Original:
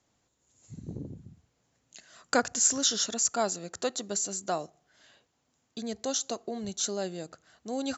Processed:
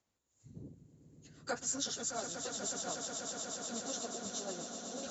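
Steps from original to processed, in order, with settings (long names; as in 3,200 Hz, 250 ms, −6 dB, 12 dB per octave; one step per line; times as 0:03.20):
time stretch by phase vocoder 0.64×
echo that builds up and dies away 122 ms, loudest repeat 8, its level −11 dB
level −7.5 dB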